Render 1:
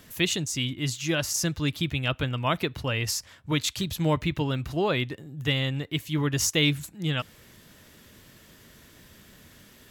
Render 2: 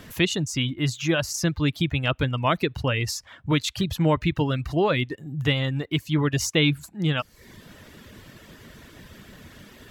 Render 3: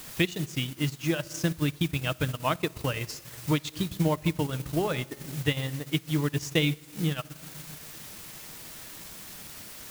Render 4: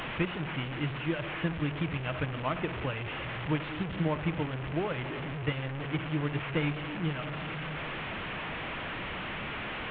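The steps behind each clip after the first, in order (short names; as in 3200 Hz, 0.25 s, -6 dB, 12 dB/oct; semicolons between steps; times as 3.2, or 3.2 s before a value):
in parallel at +1.5 dB: compressor, threshold -36 dBFS, peak gain reduction 16.5 dB; on the sum: reverb removal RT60 0.62 s; high shelf 4800 Hz -10.5 dB; gain +2.5 dB
added noise white -37 dBFS; shoebox room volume 1700 m³, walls mixed, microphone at 0.55 m; transient shaper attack +5 dB, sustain -11 dB; gain -7.5 dB
delta modulation 16 kbps, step -25.5 dBFS; gain -4.5 dB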